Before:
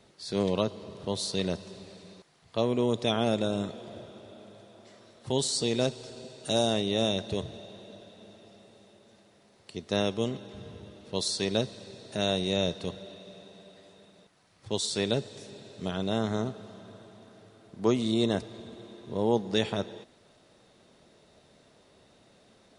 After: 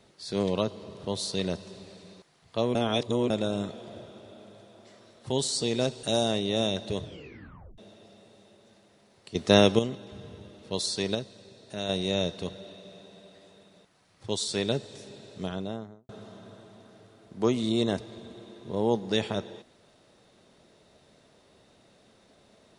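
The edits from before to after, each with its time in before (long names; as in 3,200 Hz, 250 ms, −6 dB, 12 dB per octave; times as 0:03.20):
0:02.75–0:03.30: reverse
0:06.03–0:06.45: remove
0:07.45: tape stop 0.75 s
0:09.77–0:10.21: clip gain +9 dB
0:11.57–0:12.31: clip gain −5.5 dB
0:15.76–0:16.51: fade out and dull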